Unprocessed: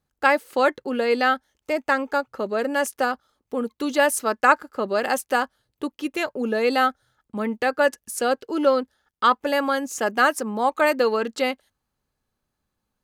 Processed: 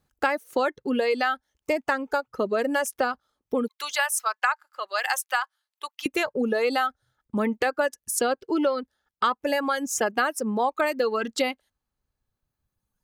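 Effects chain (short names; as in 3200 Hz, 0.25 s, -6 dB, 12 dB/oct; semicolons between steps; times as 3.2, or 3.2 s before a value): reverb removal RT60 1.8 s; 3.68–6.06 HPF 880 Hz 24 dB/oct; compressor 6:1, threshold -26 dBFS, peak gain reduction 14 dB; gain +5 dB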